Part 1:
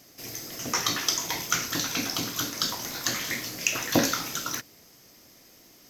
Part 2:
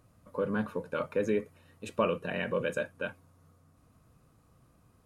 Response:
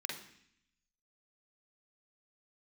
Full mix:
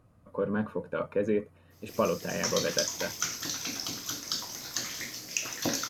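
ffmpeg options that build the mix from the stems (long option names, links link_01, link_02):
-filter_complex "[0:a]adynamicequalizer=threshold=0.00794:dfrequency=5700:dqfactor=1.2:tfrequency=5700:tqfactor=1.2:attack=5:release=100:ratio=0.375:range=3:mode=boostabove:tftype=bell,adelay=1700,volume=-9dB[link_01];[1:a]highshelf=frequency=2800:gain=-9.5,volume=1.5dB[link_02];[link_01][link_02]amix=inputs=2:normalize=0"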